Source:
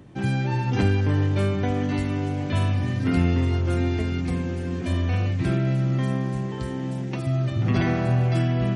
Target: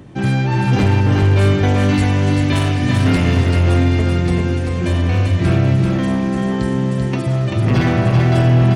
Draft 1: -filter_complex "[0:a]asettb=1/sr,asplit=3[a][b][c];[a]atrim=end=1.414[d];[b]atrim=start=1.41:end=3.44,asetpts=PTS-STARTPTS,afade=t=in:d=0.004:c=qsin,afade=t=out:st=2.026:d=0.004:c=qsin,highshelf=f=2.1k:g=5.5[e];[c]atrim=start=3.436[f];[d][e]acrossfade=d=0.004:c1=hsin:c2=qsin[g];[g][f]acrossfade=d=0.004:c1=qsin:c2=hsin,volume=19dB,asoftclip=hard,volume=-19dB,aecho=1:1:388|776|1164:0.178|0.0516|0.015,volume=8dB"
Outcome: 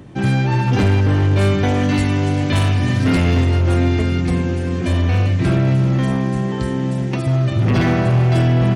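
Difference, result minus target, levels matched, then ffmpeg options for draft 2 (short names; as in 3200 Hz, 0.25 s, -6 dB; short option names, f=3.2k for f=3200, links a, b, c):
echo-to-direct -11 dB
-filter_complex "[0:a]asettb=1/sr,asplit=3[a][b][c];[a]atrim=end=1.414[d];[b]atrim=start=1.41:end=3.44,asetpts=PTS-STARTPTS,afade=t=in:d=0.004:c=qsin,afade=t=out:st=2.026:d=0.004:c=qsin,highshelf=f=2.1k:g=5.5[e];[c]atrim=start=3.436[f];[d][e]acrossfade=d=0.004:c1=hsin:c2=qsin[g];[g][f]acrossfade=d=0.004:c1=qsin:c2=hsin,volume=19dB,asoftclip=hard,volume=-19dB,aecho=1:1:388|776|1164|1552:0.631|0.183|0.0531|0.0154,volume=8dB"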